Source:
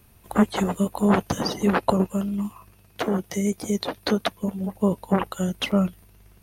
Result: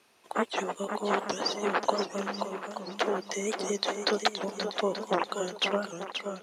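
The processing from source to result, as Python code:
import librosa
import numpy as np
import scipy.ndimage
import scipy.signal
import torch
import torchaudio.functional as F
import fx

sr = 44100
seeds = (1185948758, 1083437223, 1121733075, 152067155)

y = fx.rider(x, sr, range_db=10, speed_s=0.5)
y = scipy.signal.sosfilt(scipy.signal.cheby1(2, 1.0, [350.0, 5900.0], 'bandpass', fs=sr, output='sos'), y)
y = fx.low_shelf(y, sr, hz=460.0, db=-8.0)
y = fx.echo_swing(y, sr, ms=881, ratio=1.5, feedback_pct=31, wet_db=-7.0)
y = fx.record_warp(y, sr, rpm=78.0, depth_cents=160.0)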